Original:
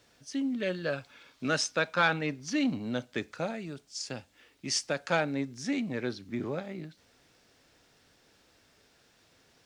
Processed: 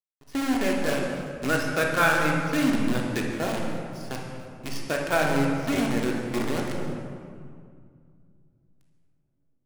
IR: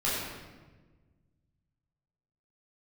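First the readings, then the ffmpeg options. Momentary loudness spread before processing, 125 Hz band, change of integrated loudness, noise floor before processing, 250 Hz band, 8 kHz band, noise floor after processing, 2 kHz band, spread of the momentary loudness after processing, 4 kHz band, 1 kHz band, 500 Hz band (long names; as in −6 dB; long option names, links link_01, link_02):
12 LU, +8.0 dB, +6.0 dB, −65 dBFS, +6.5 dB, +0.5 dB, −69 dBFS, +6.0 dB, 14 LU, +1.5 dB, +7.0 dB, +6.5 dB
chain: -filter_complex "[0:a]lowpass=3100,acrusher=bits=6:dc=4:mix=0:aa=0.000001,asplit=2[link_01][link_02];[1:a]atrim=start_sample=2205,asetrate=23814,aresample=44100[link_03];[link_02][link_03]afir=irnorm=-1:irlink=0,volume=-10.5dB[link_04];[link_01][link_04]amix=inputs=2:normalize=0"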